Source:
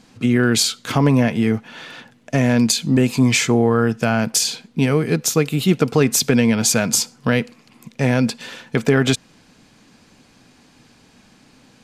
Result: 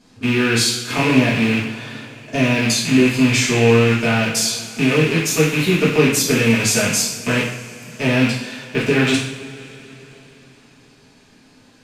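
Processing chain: rattle on loud lows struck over -24 dBFS, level -9 dBFS; two-slope reverb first 0.6 s, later 4.1 s, from -20 dB, DRR -7.5 dB; trim -8 dB

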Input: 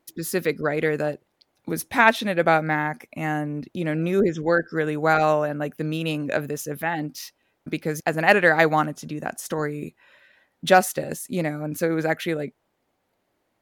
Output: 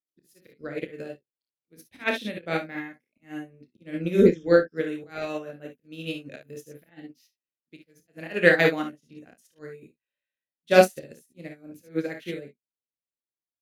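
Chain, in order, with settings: FFT filter 530 Hz 0 dB, 850 Hz -13 dB, 2.8 kHz +3 dB, 5.3 kHz 0 dB, 7.5 kHz -2 dB; slow attack 137 ms; on a send: early reflections 29 ms -5 dB, 56 ms -5 dB, 72 ms -7 dB; on the sum: upward expansion 2.5:1, over -41 dBFS; trim +4.5 dB

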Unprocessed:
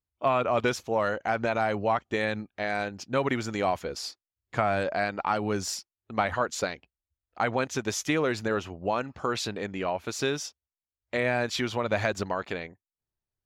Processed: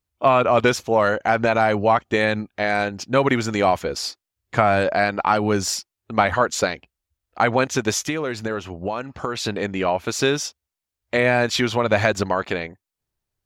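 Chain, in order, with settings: 7.98–9.45 s: compression 3:1, threshold -33 dBFS, peak gain reduction 8.5 dB; trim +8.5 dB

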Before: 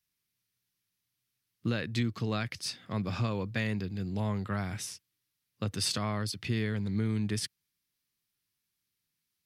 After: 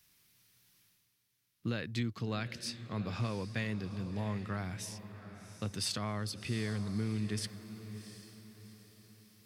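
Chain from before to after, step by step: reverse; upward compressor, threshold -46 dBFS; reverse; echo that smears into a reverb 734 ms, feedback 41%, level -12 dB; trim -4.5 dB

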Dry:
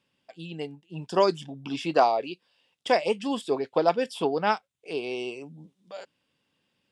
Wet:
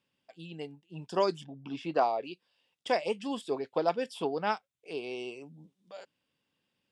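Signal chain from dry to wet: 1.43–2.24 s: low-pass 1.7 kHz -> 3.4 kHz 6 dB/octave; trim -6 dB

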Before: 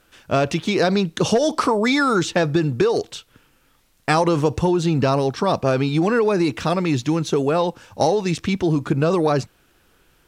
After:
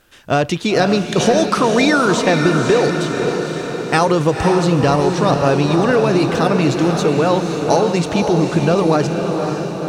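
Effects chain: tape speed +4%; vibrato 14 Hz 7.7 cents; echo that smears into a reverb 519 ms, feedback 61%, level -5 dB; trim +3 dB

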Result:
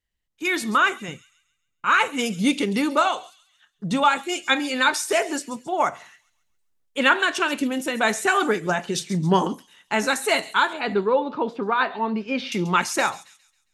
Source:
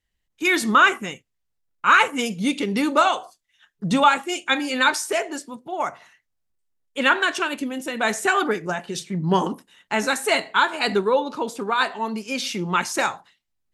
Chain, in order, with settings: 1.08–1.85 s: peaking EQ 120 Hz +9 dB 2.7 oct; gain riding within 4 dB 0.5 s; 10.73–12.52 s: distance through air 330 m; feedback echo behind a high-pass 136 ms, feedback 40%, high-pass 4 kHz, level -12 dB

